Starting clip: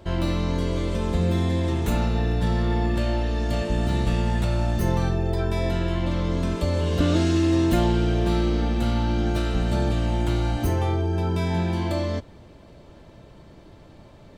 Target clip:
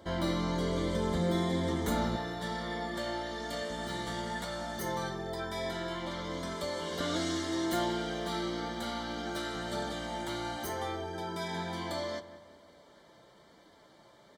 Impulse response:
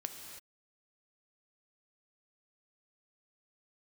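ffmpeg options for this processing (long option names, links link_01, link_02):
-filter_complex "[0:a]asetnsamples=nb_out_samples=441:pad=0,asendcmd='2.16 highpass f 900',highpass=frequency=260:poles=1,flanger=delay=3.9:depth=2:regen=-47:speed=1.1:shape=sinusoidal,asuperstop=centerf=2600:order=4:qfactor=4,asplit=2[link_01][link_02];[link_02]adelay=183,lowpass=frequency=2400:poles=1,volume=-14.5dB,asplit=2[link_03][link_04];[link_04]adelay=183,lowpass=frequency=2400:poles=1,volume=0.52,asplit=2[link_05][link_06];[link_06]adelay=183,lowpass=frequency=2400:poles=1,volume=0.52,asplit=2[link_07][link_08];[link_08]adelay=183,lowpass=frequency=2400:poles=1,volume=0.52,asplit=2[link_09][link_10];[link_10]adelay=183,lowpass=frequency=2400:poles=1,volume=0.52[link_11];[link_01][link_03][link_05][link_07][link_09][link_11]amix=inputs=6:normalize=0,volume=1.5dB"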